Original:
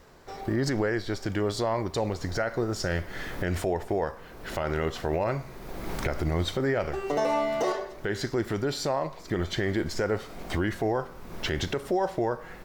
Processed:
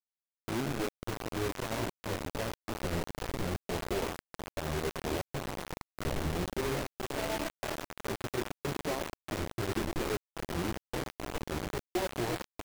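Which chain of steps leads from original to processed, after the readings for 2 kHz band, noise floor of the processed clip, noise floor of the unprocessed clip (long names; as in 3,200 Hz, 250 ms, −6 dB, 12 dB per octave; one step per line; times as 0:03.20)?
−6.0 dB, below −85 dBFS, −45 dBFS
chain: running median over 41 samples
single-tap delay 110 ms −9 dB
speech leveller within 3 dB 2 s
high-frequency loss of the air 210 metres
multi-voice chorus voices 2, 1.4 Hz, delay 15 ms, depth 3 ms
echo with shifted repeats 371 ms, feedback 62%, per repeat −38 Hz, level −8 dB
gate pattern "xx.xxxx.xxxxx" 118 BPM
bit reduction 5 bits
level −4 dB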